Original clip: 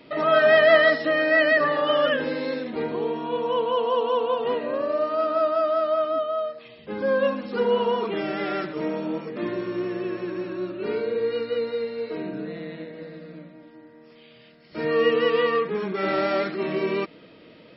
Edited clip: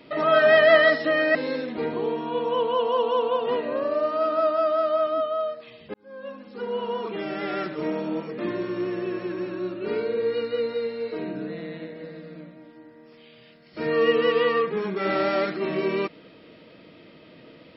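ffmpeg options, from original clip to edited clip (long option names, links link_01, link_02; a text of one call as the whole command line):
ffmpeg -i in.wav -filter_complex "[0:a]asplit=3[link_01][link_02][link_03];[link_01]atrim=end=1.352[link_04];[link_02]atrim=start=2.328:end=6.92,asetpts=PTS-STARTPTS,afade=type=out:start_time=4.588:duration=0.004:curve=hsin[link_05];[link_03]atrim=start=6.92,asetpts=PTS-STARTPTS,afade=type=in:duration=1.86[link_06];[link_05][link_06]concat=n=2:v=0:a=1[link_07];[link_04][link_07]acrossfade=duration=0.004:curve1=hsin:curve2=hsin" out.wav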